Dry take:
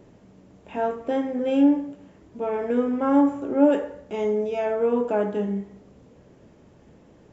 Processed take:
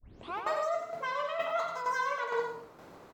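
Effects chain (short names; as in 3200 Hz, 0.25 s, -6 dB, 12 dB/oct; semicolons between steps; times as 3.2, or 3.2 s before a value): tape start at the beginning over 1.11 s; reverse; compressor, threshold -29 dBFS, peak gain reduction 16 dB; reverse; bouncing-ball echo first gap 0.21 s, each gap 0.75×, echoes 5; tremolo saw down 0.92 Hz, depth 55%; speed mistake 33 rpm record played at 78 rpm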